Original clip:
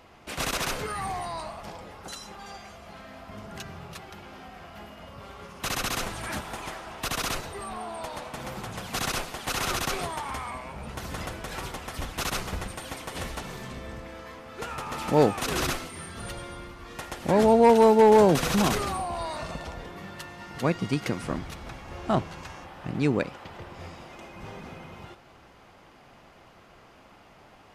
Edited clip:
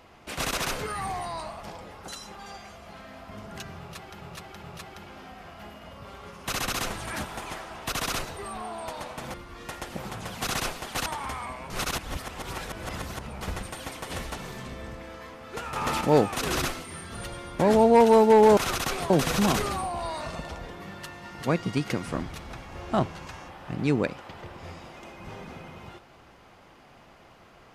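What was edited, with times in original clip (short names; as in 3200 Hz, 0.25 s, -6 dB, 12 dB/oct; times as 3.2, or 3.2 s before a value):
3.79–4.21 loop, 3 plays
9.58–10.11 move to 18.26
10.75–12.46 reverse
14.81–15.06 gain +6.5 dB
16.64–17.28 move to 8.5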